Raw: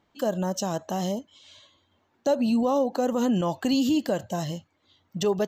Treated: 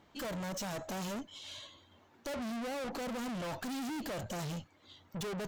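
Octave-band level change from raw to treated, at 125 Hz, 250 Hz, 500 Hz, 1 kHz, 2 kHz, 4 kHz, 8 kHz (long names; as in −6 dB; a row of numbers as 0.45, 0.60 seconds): −10.0, −14.5, −14.5, −11.5, −3.5, −8.0, −7.5 decibels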